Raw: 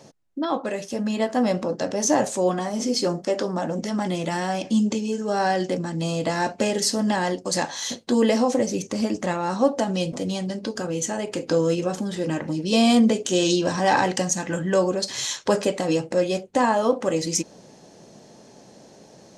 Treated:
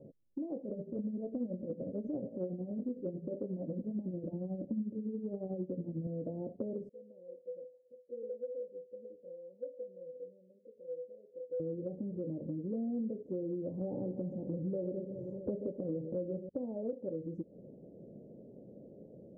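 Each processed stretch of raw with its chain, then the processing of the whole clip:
0:00.62–0:06.07: low-shelf EQ 380 Hz +9 dB + hum removal 56.24 Hz, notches 37 + amplitude tremolo 11 Hz, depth 68%
0:06.89–0:11.60: tuned comb filter 500 Hz, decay 0.25 s, harmonics odd, mix 100% + multiband delay without the direct sound lows, highs 140 ms, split 970 Hz
0:13.81–0:16.49: low-shelf EQ 420 Hz +7.5 dB + delay that swaps between a low-pass and a high-pass 128 ms, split 840 Hz, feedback 64%, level −11 dB
whole clip: elliptic low-pass filter 550 Hz, stop band 60 dB; downward compressor 4 to 1, threshold −35 dBFS; level −2.5 dB

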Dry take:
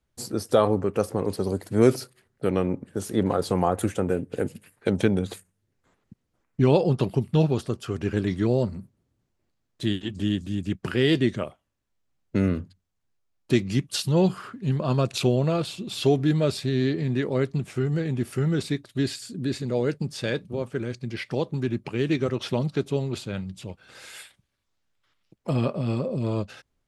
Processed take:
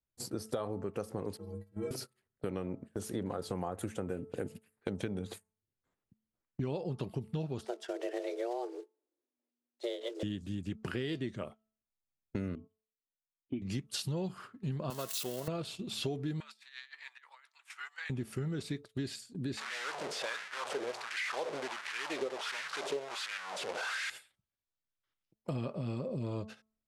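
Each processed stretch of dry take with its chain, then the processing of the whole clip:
0:01.37–0:01.91: parametric band 5,900 Hz −8.5 dB 2 octaves + stiff-string resonator 97 Hz, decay 0.62 s, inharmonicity 0.03
0:07.65–0:10.23: one scale factor per block 5 bits + frequency shifter +240 Hz + low-pass filter 8,100 Hz
0:12.55–0:13.62: phase distortion by the signal itself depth 0.37 ms + formant resonators in series i
0:14.90–0:15.48: spike at every zero crossing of −20.5 dBFS + high-pass filter 710 Hz 6 dB per octave + notch filter 2,400 Hz, Q 6.9
0:16.40–0:18.10: elliptic high-pass filter 920 Hz, stop band 80 dB + compressor whose output falls as the input rises −42 dBFS, ratio −0.5 + dynamic equaliser 1,800 Hz, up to +5 dB, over −52 dBFS, Q 0.91
0:19.57–0:24.10: linear delta modulator 64 kbit/s, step −24.5 dBFS + auto-filter high-pass sine 1.4 Hz 450–1,800 Hz + high-frequency loss of the air 61 metres
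whole clip: hum removal 218.6 Hz, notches 6; noise gate −37 dBFS, range −12 dB; downward compressor, threshold −27 dBFS; level −6 dB

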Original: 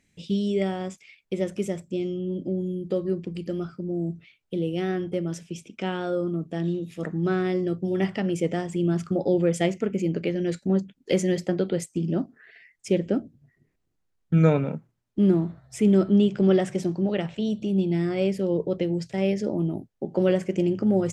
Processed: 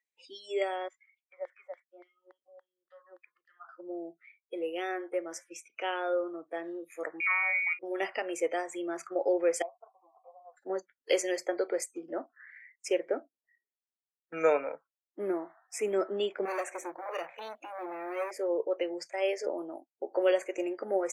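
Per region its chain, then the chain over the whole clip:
0:00.88–0:03.69: auto-filter band-pass saw down 3.5 Hz 550–4,100 Hz + parametric band 470 Hz −6 dB 1.8 octaves
0:07.20–0:07.79: high-pass filter 430 Hz 6 dB per octave + voice inversion scrambler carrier 2,600 Hz
0:09.62–0:10.57: mu-law and A-law mismatch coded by A + formant resonators in series a + high-frequency loss of the air 370 metres
0:16.45–0:18.31: parametric band 5,100 Hz −11 dB 0.25 octaves + gain into a clipping stage and back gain 27 dB
whole clip: high-pass filter 450 Hz 24 dB per octave; noise reduction from a noise print of the clip's start 25 dB

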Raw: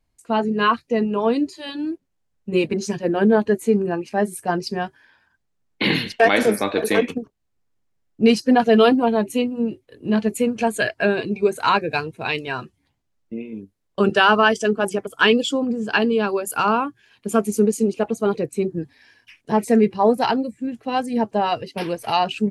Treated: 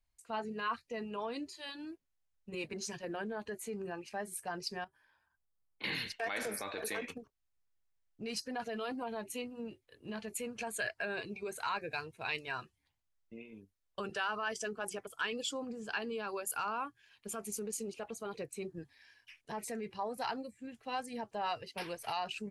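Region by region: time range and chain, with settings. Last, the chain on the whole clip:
0:04.84–0:05.84: flat-topped bell 3,300 Hz −8.5 dB 2.4 octaves + downward compressor 2 to 1, threshold −44 dBFS
whole clip: dynamic equaliser 3,200 Hz, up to −5 dB, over −40 dBFS, Q 3.2; brickwall limiter −15 dBFS; parametric band 240 Hz −12.5 dB 2.7 octaves; level −8 dB

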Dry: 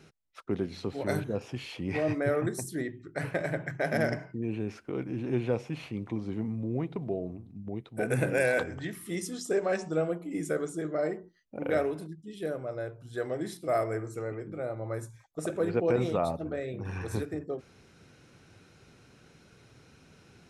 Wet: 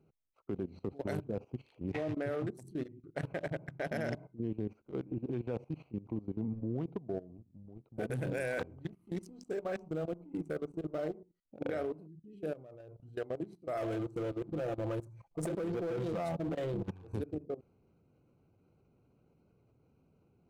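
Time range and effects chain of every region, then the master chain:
0:07.37–0:11.15: mu-law and A-law mismatch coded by A + low-shelf EQ 150 Hz +6 dB
0:13.77–0:16.91: downward compressor 2.5 to 1, threshold −32 dBFS + comb filter 5.9 ms, depth 61% + power curve on the samples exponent 0.7
whole clip: adaptive Wiener filter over 25 samples; output level in coarse steps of 17 dB; level −1 dB

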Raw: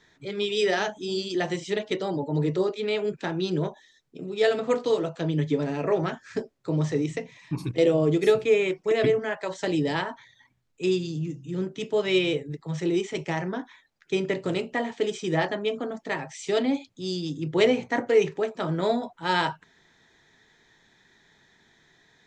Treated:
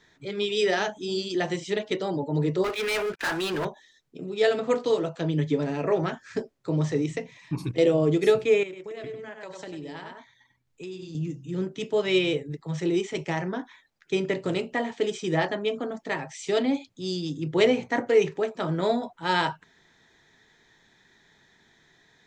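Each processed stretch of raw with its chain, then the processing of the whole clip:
0:02.64–0:03.65: resonant band-pass 1,600 Hz, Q 1.5 + leveller curve on the samples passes 5
0:08.63–0:11.15: single-tap delay 96 ms −7.5 dB + transient designer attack −1 dB, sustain −5 dB + downward compressor 4 to 1, threshold −37 dBFS
whole clip: no processing

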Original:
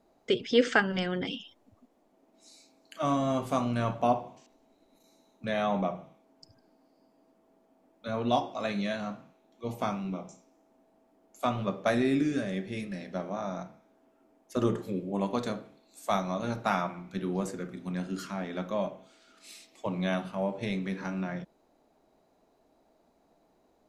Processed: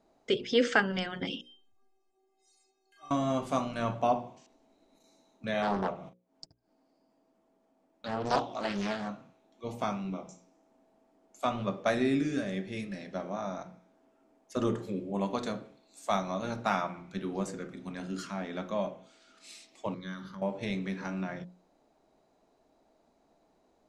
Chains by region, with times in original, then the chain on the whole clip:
0:01.41–0:03.11: mu-law and A-law mismatch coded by mu + stiff-string resonator 380 Hz, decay 0.43 s, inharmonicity 0.008
0:05.62–0:09.09: noise gate −55 dBFS, range −48 dB + upward compression, threshold −35 dBFS + highs frequency-modulated by the lows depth 0.86 ms
0:19.94–0:20.42: high-shelf EQ 9,500 Hz +9.5 dB + downward compressor 2.5 to 1, threshold −34 dBFS + phaser with its sweep stopped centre 2,600 Hz, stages 6
whole clip: Chebyshev low-pass filter 8,000 Hz, order 2; mains-hum notches 60/120/180/240/300/360/420/480/540 Hz

